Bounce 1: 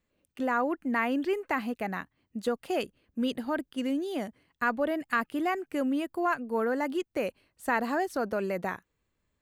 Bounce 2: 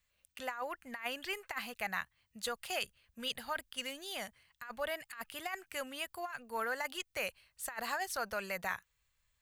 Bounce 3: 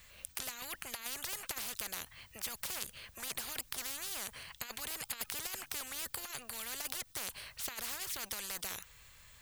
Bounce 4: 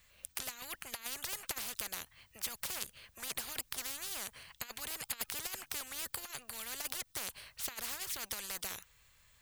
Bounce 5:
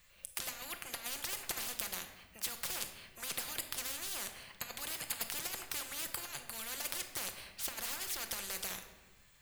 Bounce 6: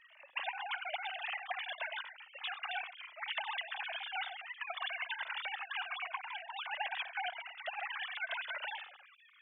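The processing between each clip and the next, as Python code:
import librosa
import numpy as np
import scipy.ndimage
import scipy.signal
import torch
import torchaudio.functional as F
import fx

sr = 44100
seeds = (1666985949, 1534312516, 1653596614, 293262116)

y1 = fx.tone_stack(x, sr, knobs='10-0-10')
y1 = fx.over_compress(y1, sr, threshold_db=-40.0, ratio=-0.5)
y1 = y1 * librosa.db_to_amplitude(4.0)
y2 = fx.spectral_comp(y1, sr, ratio=10.0)
y2 = y2 * librosa.db_to_amplitude(7.0)
y3 = fx.upward_expand(y2, sr, threshold_db=-55.0, expansion=1.5)
y3 = y3 * librosa.db_to_amplitude(2.0)
y4 = fx.room_shoebox(y3, sr, seeds[0], volume_m3=790.0, walls='mixed', distance_m=0.84)
y5 = fx.sine_speech(y4, sr)
y5 = fx.comb_cascade(y5, sr, direction='falling', hz=0.31)
y5 = y5 * librosa.db_to_amplitude(5.0)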